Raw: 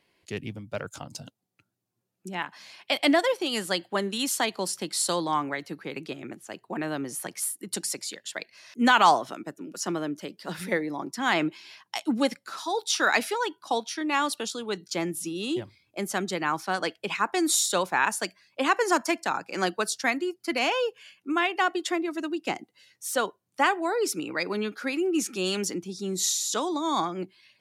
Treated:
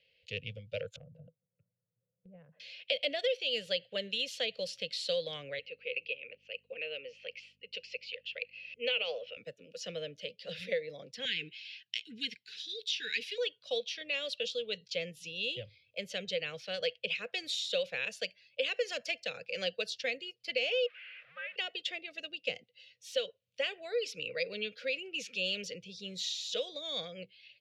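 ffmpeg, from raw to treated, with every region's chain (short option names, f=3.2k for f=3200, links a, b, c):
-filter_complex "[0:a]asettb=1/sr,asplit=3[a][b][c];[a]atrim=end=0.964[d];[b]atrim=start=0.96:end=2.6,asetpts=PTS-STARTPTS,afade=t=in:d=0.004:c=qsin,afade=t=out:st=1.636:d=0.004:c=qsin,lowpass=f=1.1k:w=0.5412,lowpass=f=1.1k:w=1.3066,equalizer=f=160:w=3.2:g=13.5,acompressor=threshold=-41dB:ratio=4:attack=3.2:release=140:knee=1:detection=peak[e];[c]atrim=start=2.596[f];[d][e]acrossfade=d=0.004:c1=hsin:c2=qsin[g];[g][f]acrossfade=d=0.004:c1=qsin:c2=hsin,asettb=1/sr,asplit=3[h][i][j];[h]atrim=end=5.594[k];[i]atrim=start=5.59:end=9.37,asetpts=PTS-STARTPTS,afade=t=in:d=0.004:c=qsin,afade=t=out:st=3.776:d=0.004:c=qsin,aeval=exprs='val(0)+0.00794*(sin(2*PI*50*n/s)+sin(2*PI*2*50*n/s)/2+sin(2*PI*3*50*n/s)/3+sin(2*PI*4*50*n/s)/4+sin(2*PI*5*50*n/s)/5)':c=same,highpass=480,equalizer=f=480:t=q:w=4:g=4,equalizer=f=680:t=q:w=4:g=-9,equalizer=f=1.1k:t=q:w=4:g=-6,equalizer=f=1.7k:t=q:w=4:g=-8,equalizer=f=2.6k:t=q:w=4:g=9,equalizer=f=3.7k:t=q:w=4:g=-10,lowpass=f=4.1k:w=0.5412,lowpass=f=4.1k:w=1.3066[l];[j]atrim=start=9.366[m];[k][l]acrossfade=d=0.004:c1=hsin:c2=qsin[n];[n][m]acrossfade=d=0.004:c1=qsin:c2=hsin,asettb=1/sr,asplit=3[o][p][q];[o]atrim=end=11.254[r];[p]atrim=start=11.25:end=13.38,asetpts=PTS-STARTPTS,afade=t=in:d=0.004:c=qsin,afade=t=out:st=2.126:d=0.004:c=qsin,lowshelf=f=120:g=-7.5,aphaser=in_gain=1:out_gain=1:delay=4.9:decay=0.23:speed=1.4:type=triangular,asuperstop=centerf=800:order=20:qfactor=0.75[s];[q]atrim=start=13.376[t];[r][s]acrossfade=d=0.004:c1=hsin:c2=qsin[u];[u][t]acrossfade=d=0.004:c1=qsin:c2=hsin,asettb=1/sr,asplit=3[v][w][x];[v]atrim=end=20.864[y];[w]atrim=start=20.86:end=21.56,asetpts=PTS-STARTPTS,afade=t=in:d=0.004:c=qsin,afade=t=out:st=0.696:d=0.004:c=qsin,aeval=exprs='val(0)+0.5*0.0376*sgn(val(0))':c=same,asuperpass=centerf=1500:order=4:qfactor=2,afreqshift=-150[z];[x]atrim=start=21.556[aa];[y][z]acrossfade=d=0.004:c1=hsin:c2=qsin[ab];[ab][aa]acrossfade=d=0.004:c1=qsin:c2=hsin,firequalizer=gain_entry='entry(110,0);entry(340,-25);entry(490,10);entry(880,-29);entry(1600,-8);entry(2700,10);entry(8900,-20)':delay=0.05:min_phase=1,acrossover=split=1000|2200|4600[ac][ad][ae][af];[ac]acompressor=threshold=-26dB:ratio=4[ag];[ad]acompressor=threshold=-39dB:ratio=4[ah];[ae]acompressor=threshold=-31dB:ratio=4[ai];[af]acompressor=threshold=-40dB:ratio=4[aj];[ag][ah][ai][aj]amix=inputs=4:normalize=0,volume=-5dB"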